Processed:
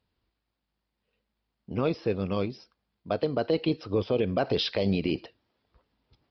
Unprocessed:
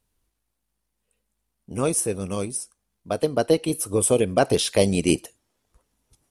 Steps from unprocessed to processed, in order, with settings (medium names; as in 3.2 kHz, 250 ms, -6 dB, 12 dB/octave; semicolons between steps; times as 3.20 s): high-pass 54 Hz; peak limiter -15 dBFS, peak gain reduction 11 dB; resampled via 11.025 kHz